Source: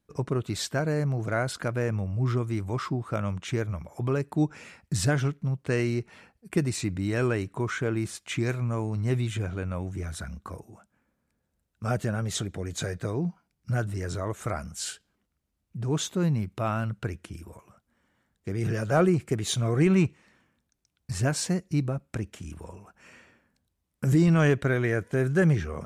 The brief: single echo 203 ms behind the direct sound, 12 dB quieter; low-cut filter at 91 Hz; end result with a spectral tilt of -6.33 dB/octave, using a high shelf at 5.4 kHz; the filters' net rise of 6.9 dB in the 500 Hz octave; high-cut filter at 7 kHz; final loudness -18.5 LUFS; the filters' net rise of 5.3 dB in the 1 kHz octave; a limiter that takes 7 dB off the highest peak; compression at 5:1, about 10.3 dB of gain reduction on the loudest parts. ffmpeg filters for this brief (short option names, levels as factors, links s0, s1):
-af "highpass=91,lowpass=7000,equalizer=f=500:t=o:g=8,equalizer=f=1000:t=o:g=5,highshelf=f=5400:g=-8.5,acompressor=threshold=0.0631:ratio=5,alimiter=limit=0.1:level=0:latency=1,aecho=1:1:203:0.251,volume=4.73"